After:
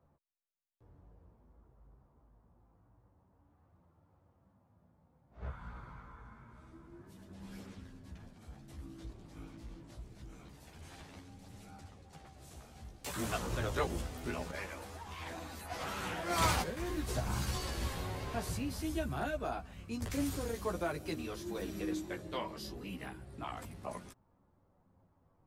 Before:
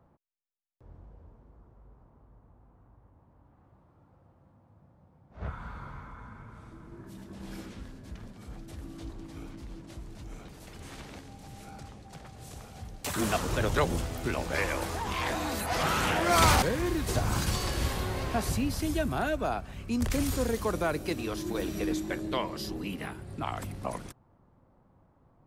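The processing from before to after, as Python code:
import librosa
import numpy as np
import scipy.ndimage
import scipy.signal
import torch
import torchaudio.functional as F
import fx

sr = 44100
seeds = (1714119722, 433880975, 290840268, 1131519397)

y = fx.chorus_voices(x, sr, voices=2, hz=0.26, base_ms=14, depth_ms=3.5, mix_pct=45)
y = fx.upward_expand(y, sr, threshold_db=-35.0, expansion=1.5, at=(14.51, 16.77))
y = y * 10.0 ** (-4.5 / 20.0)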